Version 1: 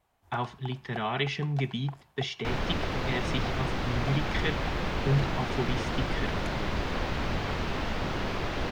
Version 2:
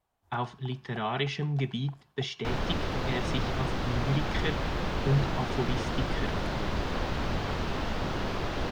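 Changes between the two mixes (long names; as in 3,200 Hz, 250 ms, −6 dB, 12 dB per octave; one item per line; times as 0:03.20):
first sound −6.5 dB
master: add parametric band 2,200 Hz −3.5 dB 0.73 octaves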